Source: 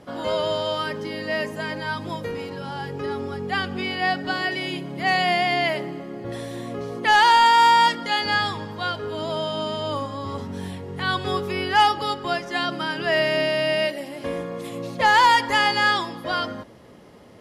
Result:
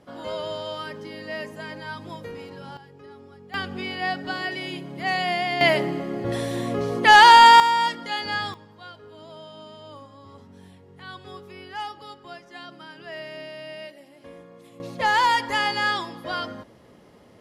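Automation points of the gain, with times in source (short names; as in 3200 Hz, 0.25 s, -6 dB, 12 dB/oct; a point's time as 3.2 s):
-7 dB
from 2.77 s -17 dB
from 3.54 s -4 dB
from 5.61 s +5 dB
from 7.6 s -5.5 dB
from 8.54 s -16 dB
from 14.8 s -4 dB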